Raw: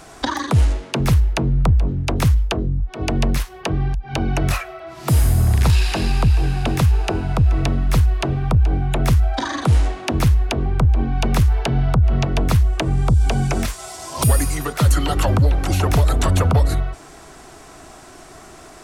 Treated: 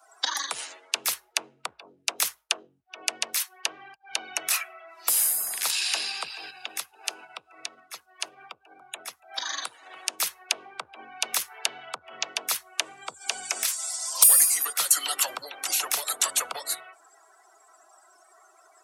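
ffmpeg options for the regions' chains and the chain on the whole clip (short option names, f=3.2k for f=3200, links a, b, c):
-filter_complex "[0:a]asettb=1/sr,asplit=3[a][b][c];[a]atrim=end=6.504[d];[b]atrim=start=6.5:end=10.2,asetpts=PTS-STARTPTS,afade=t=in:d=0.004:c=qsin,afade=t=out:st=3.696:d=0.004:c=qsin,aecho=1:1:285:0.188,atrim=end_sample=163170,acompressor=threshold=-20dB:ratio=10:attack=3.2:release=140:knee=1:detection=peak[e];[c]atrim=start=10.196[f];[d][e]acrossfade=d=0.004:c1=hsin:c2=qsin[g];[g][f]acrossfade=d=0.004:c1=qsin:c2=hsin,highpass=460,afftdn=nr=27:nf=-41,aderivative,volume=7.5dB"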